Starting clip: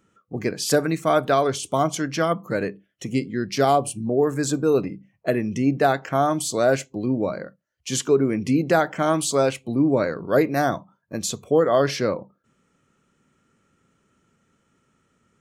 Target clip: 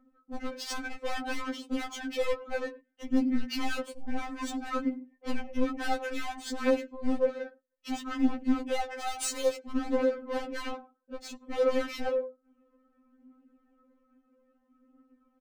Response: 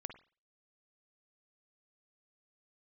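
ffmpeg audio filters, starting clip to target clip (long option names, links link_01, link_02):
-filter_complex "[0:a]equalizer=frequency=120:width_type=o:width=0.36:gain=13.5,aecho=1:1:103:0.0891,asplit=2[link_01][link_02];[link_02]aeval=exprs='(mod(5.01*val(0)+1,2)-1)/5.01':channel_layout=same,volume=-3dB[link_03];[link_01][link_03]amix=inputs=2:normalize=0,asettb=1/sr,asplit=3[link_04][link_05][link_06];[link_04]atrim=end=8.974[link_07];[link_05]atrim=start=8.97:end=9.7,asetpts=PTS-STARTPTS,afade=type=in:duration=0.004:curve=qsin,afade=type=out:start_time=0.726:duration=0.004:curve=qsin,bass=frequency=250:gain=-8,treble=frequency=4000:gain=13[link_08];[link_06]atrim=start=9.696[link_09];[link_07][link_08]acrossfade=duration=0.004:curve1=hsin:curve2=qsin[link_10];[link_10][link_09]acrossfade=duration=0.004:curve1=qsin:curve2=hsin,dynaudnorm=framelen=330:gausssize=17:maxgain=11.5dB,asoftclip=type=tanh:threshold=-12.5dB,adynamicsmooth=sensitivity=2:basefreq=930,alimiter=limit=-23dB:level=0:latency=1:release=308,aphaser=in_gain=1:out_gain=1:delay=2.7:decay=0.48:speed=0.6:type=triangular,afftfilt=real='re*3.46*eq(mod(b,12),0)':imag='im*3.46*eq(mod(b,12),0)':win_size=2048:overlap=0.75"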